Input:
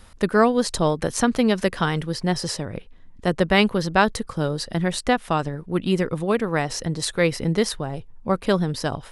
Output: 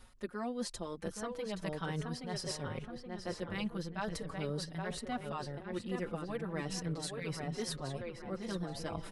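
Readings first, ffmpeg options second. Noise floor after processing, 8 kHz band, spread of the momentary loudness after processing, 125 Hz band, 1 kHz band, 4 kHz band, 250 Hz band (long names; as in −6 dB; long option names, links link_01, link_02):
−51 dBFS, −14.5 dB, 4 LU, −14.5 dB, −18.5 dB, −15.5 dB, −17.0 dB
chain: -filter_complex "[0:a]areverse,acompressor=threshold=-31dB:ratio=6,areverse,asplit=2[link_01][link_02];[link_02]adelay=824,lowpass=frequency=3100:poles=1,volume=-4dB,asplit=2[link_03][link_04];[link_04]adelay=824,lowpass=frequency=3100:poles=1,volume=0.49,asplit=2[link_05][link_06];[link_06]adelay=824,lowpass=frequency=3100:poles=1,volume=0.49,asplit=2[link_07][link_08];[link_08]adelay=824,lowpass=frequency=3100:poles=1,volume=0.49,asplit=2[link_09][link_10];[link_10]adelay=824,lowpass=frequency=3100:poles=1,volume=0.49,asplit=2[link_11][link_12];[link_12]adelay=824,lowpass=frequency=3100:poles=1,volume=0.49[link_13];[link_01][link_03][link_05][link_07][link_09][link_11][link_13]amix=inputs=7:normalize=0,asplit=2[link_14][link_15];[link_15]adelay=5,afreqshift=-0.39[link_16];[link_14][link_16]amix=inputs=2:normalize=1,volume=-3dB"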